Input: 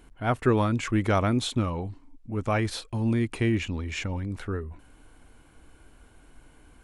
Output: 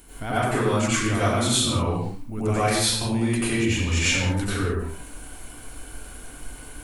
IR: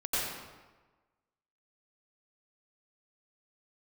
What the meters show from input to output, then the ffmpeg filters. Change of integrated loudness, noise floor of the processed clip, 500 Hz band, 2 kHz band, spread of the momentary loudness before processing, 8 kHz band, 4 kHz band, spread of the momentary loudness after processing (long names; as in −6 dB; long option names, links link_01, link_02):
+4.5 dB, −42 dBFS, +3.5 dB, +7.5 dB, 11 LU, +16.5 dB, +11.0 dB, 20 LU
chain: -filter_complex "[0:a]acompressor=threshold=-33dB:ratio=4,aemphasis=mode=production:type=75fm[link_01];[1:a]atrim=start_sample=2205,afade=type=out:start_time=0.36:duration=0.01,atrim=end_sample=16317[link_02];[link_01][link_02]afir=irnorm=-1:irlink=0,volume=5dB"